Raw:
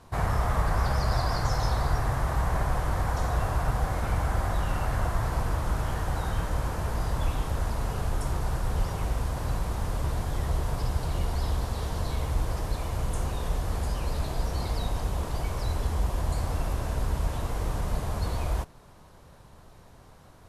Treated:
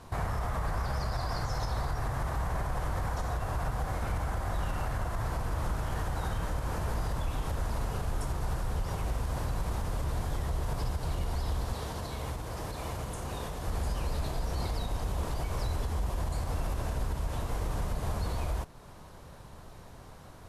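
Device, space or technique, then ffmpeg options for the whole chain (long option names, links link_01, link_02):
stacked limiters: -filter_complex "[0:a]alimiter=limit=-18dB:level=0:latency=1:release=308,alimiter=limit=-21.5dB:level=0:latency=1:release=61,alimiter=level_in=2.5dB:limit=-24dB:level=0:latency=1:release=303,volume=-2.5dB,asettb=1/sr,asplit=3[link_01][link_02][link_03];[link_01]atrim=end=11.744[link_04];[link_02]atrim=start=11.74:end=13.67,asetpts=PTS-STARTPTS,afade=type=in:duration=0.004:curve=qsin,afade=type=out:start_time=1.926:duration=0.004:curve=qsin,highpass=frequency=110:poles=1[link_05];[link_03]atrim=start=13.666[link_06];[link_04][link_05]acrossfade=duration=0.004:curve1=hsin:curve2=qsin[link_07];[link_07][link_06]acrossfade=duration=0.004:curve1=qsin:curve2=hsin,volume=3dB"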